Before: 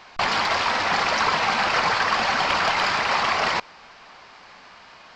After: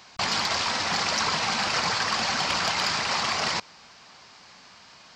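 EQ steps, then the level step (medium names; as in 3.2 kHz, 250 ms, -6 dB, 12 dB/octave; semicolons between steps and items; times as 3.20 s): high-pass 170 Hz 6 dB/octave; tone controls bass +12 dB, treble +14 dB; -6.5 dB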